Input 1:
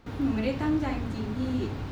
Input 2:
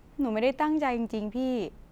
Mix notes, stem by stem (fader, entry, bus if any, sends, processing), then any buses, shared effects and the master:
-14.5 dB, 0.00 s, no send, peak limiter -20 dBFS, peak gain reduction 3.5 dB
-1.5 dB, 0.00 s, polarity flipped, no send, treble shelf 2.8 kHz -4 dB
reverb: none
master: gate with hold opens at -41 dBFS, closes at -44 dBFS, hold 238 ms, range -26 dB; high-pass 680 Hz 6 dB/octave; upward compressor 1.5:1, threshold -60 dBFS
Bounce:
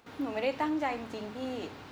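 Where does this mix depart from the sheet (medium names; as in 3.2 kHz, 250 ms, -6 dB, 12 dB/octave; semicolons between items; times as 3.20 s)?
stem 1 -14.5 dB -> -3.0 dB; master: missing gate with hold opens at -41 dBFS, closes at -44 dBFS, hold 238 ms, range -26 dB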